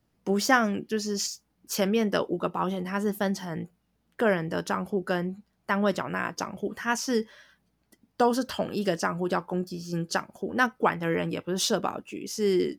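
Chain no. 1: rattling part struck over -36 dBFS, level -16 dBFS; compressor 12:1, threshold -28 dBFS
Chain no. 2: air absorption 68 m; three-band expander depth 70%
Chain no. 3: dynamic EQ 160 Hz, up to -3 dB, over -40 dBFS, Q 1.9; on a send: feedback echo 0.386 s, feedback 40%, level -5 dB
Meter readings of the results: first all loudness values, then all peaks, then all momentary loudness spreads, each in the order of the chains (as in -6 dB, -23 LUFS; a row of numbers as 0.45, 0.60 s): -33.0, -27.5, -27.5 LUFS; -16.5, -2.0, -7.0 dBFS; 4, 14, 7 LU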